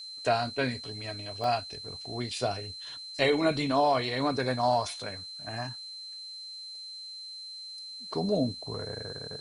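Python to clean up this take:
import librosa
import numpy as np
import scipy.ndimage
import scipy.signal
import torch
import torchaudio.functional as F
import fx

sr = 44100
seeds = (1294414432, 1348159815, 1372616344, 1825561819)

y = fx.notch(x, sr, hz=4100.0, q=30.0)
y = fx.fix_interpolate(y, sr, at_s=(1.44,), length_ms=1.7)
y = fx.noise_reduce(y, sr, print_start_s=6.92, print_end_s=7.42, reduce_db=30.0)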